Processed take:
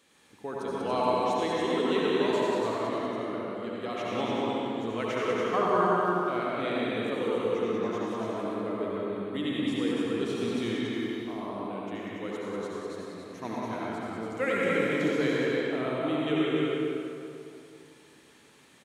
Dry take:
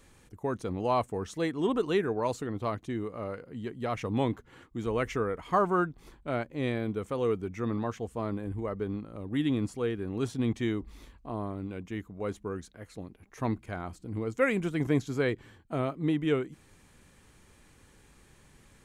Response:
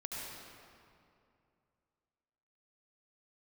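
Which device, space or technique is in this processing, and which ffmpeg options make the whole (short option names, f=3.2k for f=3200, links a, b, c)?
stadium PA: -filter_complex "[0:a]highpass=220,equalizer=f=3.4k:t=o:w=0.85:g=7,aecho=1:1:189.5|285.7:0.562|0.562[a];[1:a]atrim=start_sample=2205[b];[a][b]afir=irnorm=-1:irlink=0"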